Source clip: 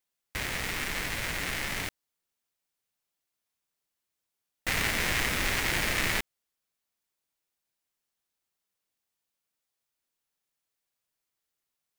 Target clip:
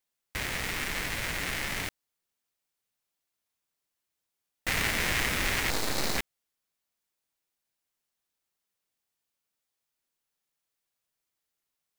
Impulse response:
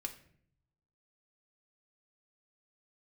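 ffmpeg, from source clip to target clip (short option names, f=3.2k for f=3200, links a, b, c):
-filter_complex "[0:a]asettb=1/sr,asplit=3[a][b][c];[a]atrim=end=5.704[d];[b]atrim=start=5.7:end=6.18,asetpts=PTS-STARTPTS,afade=t=in:d=0.004:c=qsin,afade=t=out:st=0.476:d=0.004:c=qsin,aeval=exprs='abs(val(0))':c=same[e];[c]atrim=start=6.176[f];[d][e]acrossfade=d=0.004:c1=hsin:c2=qsin[g];[g][f]acrossfade=d=0.004:c1=qsin:c2=hsin"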